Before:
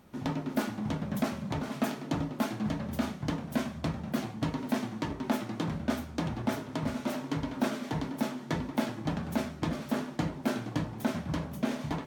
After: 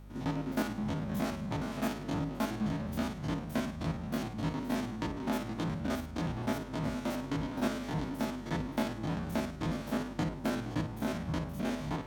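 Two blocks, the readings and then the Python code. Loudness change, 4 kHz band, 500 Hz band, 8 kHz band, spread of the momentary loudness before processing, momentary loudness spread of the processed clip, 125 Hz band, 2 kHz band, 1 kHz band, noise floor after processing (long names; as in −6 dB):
−1.5 dB, −2.0 dB, −1.5 dB, −2.0 dB, 3 LU, 3 LU, −1.0 dB, −1.5 dB, −1.5 dB, −43 dBFS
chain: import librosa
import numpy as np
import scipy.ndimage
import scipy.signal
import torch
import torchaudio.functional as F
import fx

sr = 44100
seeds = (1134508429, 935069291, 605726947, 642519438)

y = fx.spec_steps(x, sr, hold_ms=50)
y = fx.add_hum(y, sr, base_hz=50, snr_db=15)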